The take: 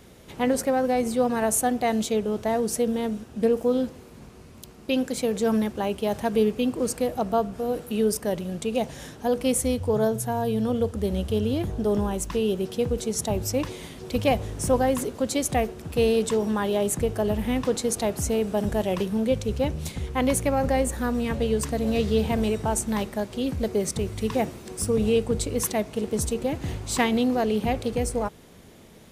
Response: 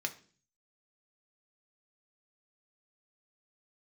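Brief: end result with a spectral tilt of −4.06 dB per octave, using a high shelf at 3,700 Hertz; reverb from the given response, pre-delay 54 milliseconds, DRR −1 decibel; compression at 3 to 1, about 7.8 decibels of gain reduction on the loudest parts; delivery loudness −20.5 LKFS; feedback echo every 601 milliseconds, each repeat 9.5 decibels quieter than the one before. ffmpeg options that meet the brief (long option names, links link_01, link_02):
-filter_complex "[0:a]highshelf=frequency=3700:gain=6.5,acompressor=threshold=-27dB:ratio=3,aecho=1:1:601|1202|1803|2404:0.335|0.111|0.0365|0.012,asplit=2[link_01][link_02];[1:a]atrim=start_sample=2205,adelay=54[link_03];[link_02][link_03]afir=irnorm=-1:irlink=0,volume=-1.5dB[link_04];[link_01][link_04]amix=inputs=2:normalize=0,volume=6.5dB"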